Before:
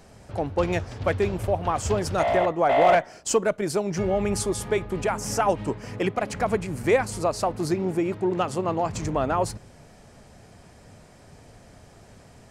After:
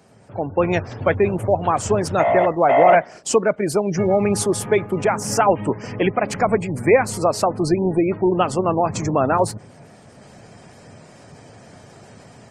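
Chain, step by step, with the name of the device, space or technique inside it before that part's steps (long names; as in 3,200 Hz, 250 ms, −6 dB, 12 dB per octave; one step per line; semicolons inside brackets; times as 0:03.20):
noise-suppressed video call (high-pass filter 100 Hz 24 dB per octave; gate on every frequency bin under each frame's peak −30 dB strong; automatic gain control gain up to 7 dB; Opus 24 kbit/s 48,000 Hz)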